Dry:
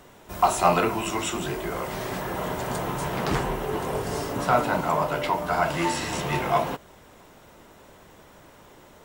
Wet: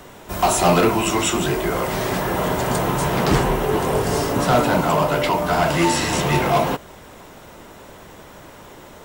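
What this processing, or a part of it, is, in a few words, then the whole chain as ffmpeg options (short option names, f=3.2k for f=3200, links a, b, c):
one-band saturation: -filter_complex "[0:a]acrossover=split=550|3600[a][b][c];[b]asoftclip=type=tanh:threshold=-27.5dB[d];[a][d][c]amix=inputs=3:normalize=0,volume=9dB"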